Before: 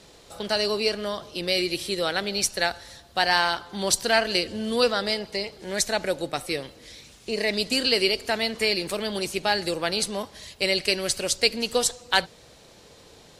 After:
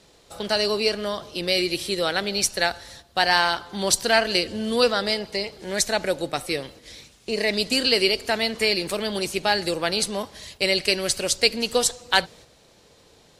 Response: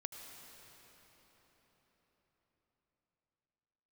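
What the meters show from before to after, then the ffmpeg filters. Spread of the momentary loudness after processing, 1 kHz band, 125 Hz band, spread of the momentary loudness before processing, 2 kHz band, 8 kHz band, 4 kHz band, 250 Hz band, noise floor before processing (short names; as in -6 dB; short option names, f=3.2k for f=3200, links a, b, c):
10 LU, +2.0 dB, +2.0 dB, 10 LU, +2.0 dB, +2.0 dB, +2.0 dB, +2.0 dB, -52 dBFS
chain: -af "agate=range=-6dB:threshold=-47dB:ratio=16:detection=peak,volume=2dB"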